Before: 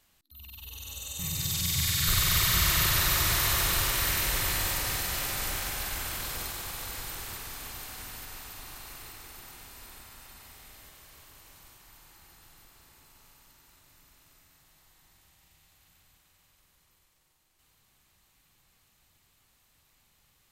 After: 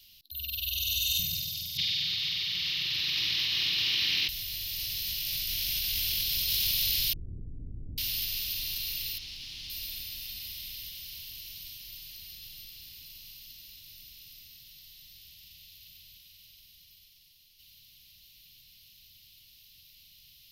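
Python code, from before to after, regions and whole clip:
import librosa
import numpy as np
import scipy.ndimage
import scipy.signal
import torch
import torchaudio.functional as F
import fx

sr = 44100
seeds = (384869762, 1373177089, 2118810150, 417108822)

y = fx.chain(x, sr, fx.highpass(hz=270.0, slope=12),
    fx.air_absorb(metres=260.0), at=(1.77, 4.29))
y = fx.chain(y, sr, fx.steep_lowpass(hz=570.0, slope=48),
    fx.env_flatten(amount_pct=100), at=(7.13, 7.98))
y = fx.chain(y, sr, fx.clip_1bit(),
    fx.air_absorb(metres=82.0), at=(9.18, 9.7))
y = fx.curve_eq(y, sr, hz=(130.0, 310.0, 540.0, 980.0, 1400.0, 2900.0, 5300.0, 7700.0, 12000.0), db=(0, -8, -24, -20, -21, 11, 13, -9, 9))
y = fx.over_compress(y, sr, threshold_db=-31.0, ratio=-1.0)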